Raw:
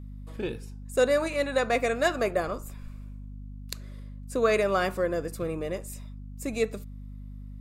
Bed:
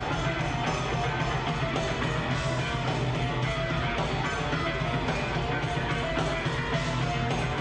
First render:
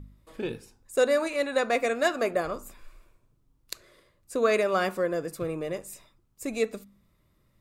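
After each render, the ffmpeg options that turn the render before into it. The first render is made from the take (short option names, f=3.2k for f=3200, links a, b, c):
-af "bandreject=f=50:t=h:w=4,bandreject=f=100:t=h:w=4,bandreject=f=150:t=h:w=4,bandreject=f=200:t=h:w=4,bandreject=f=250:t=h:w=4"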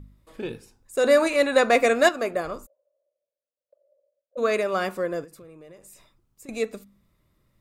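-filter_complex "[0:a]asettb=1/sr,asplit=3[a][b][c];[a]atrim=end=1.044[d];[b]atrim=start=1.04:end=2.09,asetpts=PTS-STARTPTS,afade=t=in:d=0.004:c=qsin,afade=t=out:st=1.046:d=0.004:c=qsin,acontrast=86[e];[c]atrim=start=2.086[f];[d][e]acrossfade=d=0.004:c1=hsin:c2=qsin[g];[g][f]acrossfade=d=0.004:c1=qsin:c2=hsin,asplit=3[h][i][j];[h]afade=t=out:st=2.65:d=0.02[k];[i]asuperpass=centerf=570:order=4:qfactor=6.2,afade=t=in:st=2.65:d=0.02,afade=t=out:st=4.37:d=0.02[l];[j]afade=t=in:st=4.37:d=0.02[m];[k][l][m]amix=inputs=3:normalize=0,asettb=1/sr,asplit=3[n][o][p];[n]atrim=end=5.244[q];[o]atrim=start=5.24:end=6.49,asetpts=PTS-STARTPTS,afade=t=in:d=0.004:c=qsin,afade=t=out:st=1.246:d=0.004:c=qsin,acompressor=threshold=-45dB:ratio=5:attack=3.2:release=140:knee=1:detection=peak[r];[p]atrim=start=6.486[s];[q][r]acrossfade=d=0.004:c1=hsin:c2=qsin[t];[t][s]acrossfade=d=0.004:c1=qsin:c2=hsin"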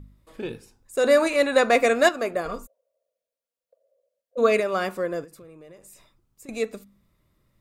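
-filter_complex "[0:a]asettb=1/sr,asplit=3[a][b][c];[a]atrim=end=2.454[d];[b]atrim=start=2.45:end=4.6,asetpts=PTS-STARTPTS,afade=t=in:d=0.004:c=qsin,afade=t=out:st=2.146:d=0.004:c=qsin,aecho=1:1:4.3:0.77,atrim=end_sample=94815[e];[c]atrim=start=4.596[f];[d][e]acrossfade=d=0.004:c1=hsin:c2=qsin[g];[g][f]acrossfade=d=0.004:c1=qsin:c2=hsin"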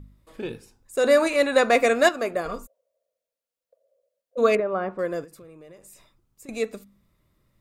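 -filter_complex "[0:a]asettb=1/sr,asplit=3[a][b][c];[a]atrim=end=4.554[d];[b]atrim=start=4.55:end=4.99,asetpts=PTS-STARTPTS,afade=t=in:d=0.004:c=qsin,afade=t=out:st=0.436:d=0.004:c=qsin,lowpass=1.2k[e];[c]atrim=start=4.986[f];[d][e]acrossfade=d=0.004:c1=hsin:c2=qsin[g];[g][f]acrossfade=d=0.004:c1=qsin:c2=hsin"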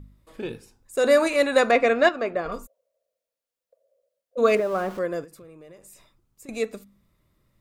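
-filter_complex "[0:a]asettb=1/sr,asplit=3[a][b][c];[a]atrim=end=1.714[d];[b]atrim=start=1.71:end=2.52,asetpts=PTS-STARTPTS,afade=t=in:d=0.004:c=qsin,afade=t=out:st=0.806:d=0.004:c=qsin,lowpass=3.6k[e];[c]atrim=start=2.516[f];[d][e]acrossfade=d=0.004:c1=hsin:c2=qsin[g];[g][f]acrossfade=d=0.004:c1=qsin:c2=hsin,asettb=1/sr,asplit=3[h][i][j];[h]atrim=end=4.474[k];[i]atrim=start=4.47:end=4.99,asetpts=PTS-STARTPTS,afade=t=in:d=0.004:c=qsin,afade=t=out:st=0.516:d=0.004:c=qsin,aeval=exprs='val(0)+0.5*0.0133*sgn(val(0))':c=same[l];[j]atrim=start=4.986[m];[k][l]acrossfade=d=0.004:c1=hsin:c2=qsin[n];[n][m]acrossfade=d=0.004:c1=qsin:c2=hsin"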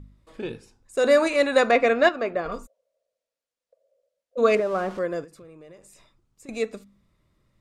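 -af "lowpass=8.3k"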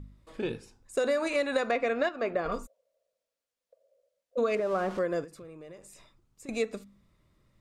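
-af "acompressor=threshold=-24dB:ratio=12"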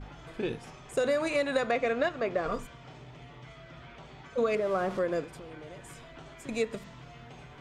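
-filter_complex "[1:a]volume=-20.5dB[a];[0:a][a]amix=inputs=2:normalize=0"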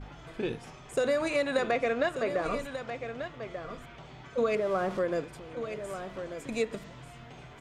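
-af "aecho=1:1:1189:0.335"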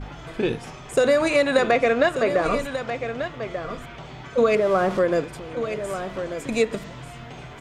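-af "volume=9dB"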